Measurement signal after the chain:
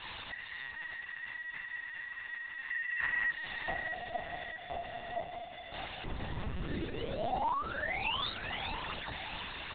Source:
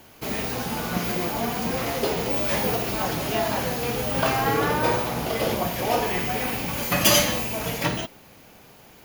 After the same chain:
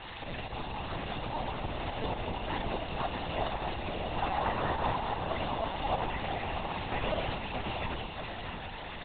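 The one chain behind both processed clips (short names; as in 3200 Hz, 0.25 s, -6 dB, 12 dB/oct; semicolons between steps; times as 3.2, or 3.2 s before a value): delta modulation 32 kbps, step -31.5 dBFS; bell 100 Hz -8 dB 2.1 oct; comb 1.1 ms, depth 42%; de-hum 347.2 Hz, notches 29; dynamic EQ 1800 Hz, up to -5 dB, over -40 dBFS, Q 1.5; in parallel at -2 dB: compressor 6:1, threshold -35 dBFS; on the sum: whisperiser; pump 126 bpm, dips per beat 2, -7 dB, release 66 ms; on a send: split-band echo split 2600 Hz, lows 0.629 s, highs 0.405 s, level -7 dB; on the sum: LPC vocoder at 8 kHz pitch kept; gain -8.5 dB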